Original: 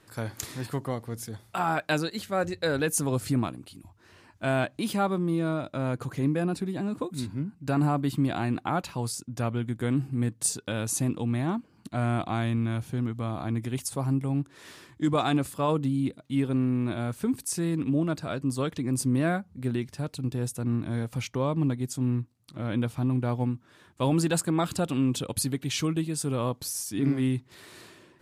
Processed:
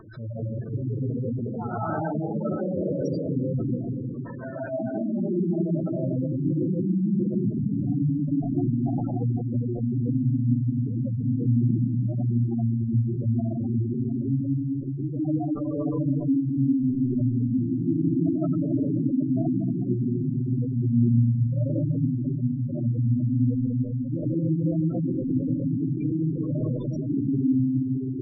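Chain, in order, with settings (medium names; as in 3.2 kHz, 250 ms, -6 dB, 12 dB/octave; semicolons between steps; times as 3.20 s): knee-point frequency compression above 2.4 kHz 1.5:1; 3.47–4.58 s: high-pass 370 Hz 12 dB/octave; treble shelf 3.3 kHz -8.5 dB; in parallel at -1.5 dB: compression 5:1, threshold -42 dBFS, peak gain reduction 19 dB; on the sum: peak limiter -24.5 dBFS, peak gain reduction 11 dB; upward compressor, threshold -35 dBFS; rotary cabinet horn 6 Hz; on a send: feedback echo behind a high-pass 1177 ms, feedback 79%, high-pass 3.6 kHz, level -11.5 dB; on the sum: algorithmic reverb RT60 4.2 s, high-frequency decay 0.45×, pre-delay 80 ms, DRR -9.5 dB; spectral gate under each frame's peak -10 dB strong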